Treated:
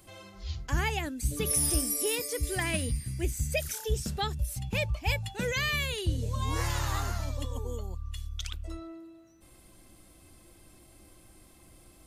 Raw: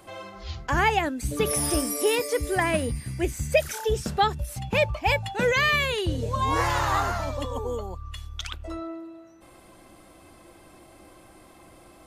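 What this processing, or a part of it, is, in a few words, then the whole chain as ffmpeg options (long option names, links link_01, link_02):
smiley-face EQ: -filter_complex "[0:a]lowshelf=frequency=83:gain=7.5,equalizer=frequency=870:width_type=o:width=2.6:gain=-9,highshelf=frequency=5500:gain=6,asettb=1/sr,asplit=3[link_01][link_02][link_03];[link_01]atrim=end=2.434[link_04];[link_02]atrim=start=2.43:end=2.97,asetpts=PTS-STARTPTS,afade=type=in:duration=0.004:curve=qsin,afade=type=out:start_time=0.536:duration=0.004:curve=qsin,equalizer=frequency=3400:width_type=o:width=1.8:gain=5[link_05];[link_03]atrim=start=2.966[link_06];[link_04][link_05]acrossfade=duration=0.004:curve1=hsin:curve2=qsin[link_07];[link_07][link_06]acrossfade=duration=0.004:curve1=qsin:curve2=hsin,volume=-4dB"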